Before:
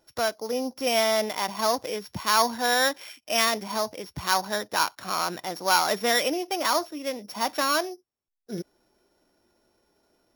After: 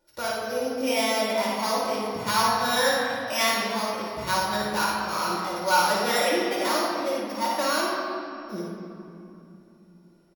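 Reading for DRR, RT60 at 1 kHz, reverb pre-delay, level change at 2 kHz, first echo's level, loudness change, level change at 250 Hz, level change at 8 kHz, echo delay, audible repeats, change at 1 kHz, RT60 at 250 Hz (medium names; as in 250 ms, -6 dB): -6.0 dB, 2.7 s, 3 ms, +1.0 dB, -4.0 dB, +0.5 dB, +3.0 dB, -1.0 dB, 57 ms, 2, +1.5 dB, 3.9 s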